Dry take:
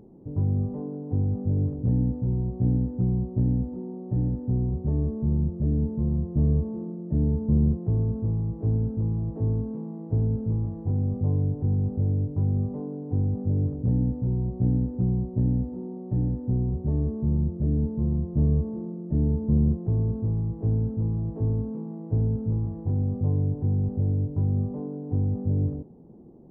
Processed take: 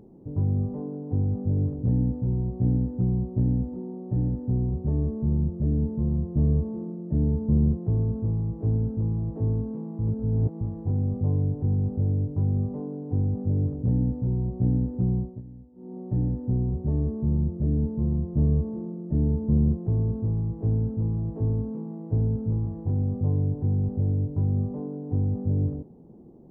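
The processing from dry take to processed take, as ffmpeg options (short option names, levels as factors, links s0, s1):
-filter_complex "[0:a]asplit=5[s0][s1][s2][s3][s4];[s0]atrim=end=9.992[s5];[s1]atrim=start=9.988:end=10.612,asetpts=PTS-STARTPTS,areverse[s6];[s2]atrim=start=10.608:end=15.42,asetpts=PTS-STARTPTS,afade=t=out:st=4.572:d=0.24:silence=0.1[s7];[s3]atrim=start=15.42:end=15.75,asetpts=PTS-STARTPTS,volume=0.1[s8];[s4]atrim=start=15.75,asetpts=PTS-STARTPTS,afade=t=in:d=0.24:silence=0.1[s9];[s5][s6]acrossfade=d=0.004:c1=hsin:c2=hsin[s10];[s7][s8][s9]concat=n=3:v=0:a=1[s11];[s10][s11]acrossfade=d=0.004:c1=hsin:c2=hsin"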